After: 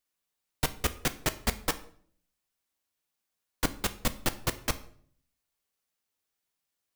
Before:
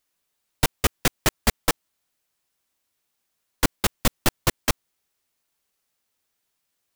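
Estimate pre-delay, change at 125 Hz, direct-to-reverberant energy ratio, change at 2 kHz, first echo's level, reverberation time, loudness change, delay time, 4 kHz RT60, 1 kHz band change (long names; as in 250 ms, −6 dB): 3 ms, −7.5 dB, 10.0 dB, −7.5 dB, no echo audible, 0.55 s, −7.5 dB, no echo audible, 0.45 s, −7.5 dB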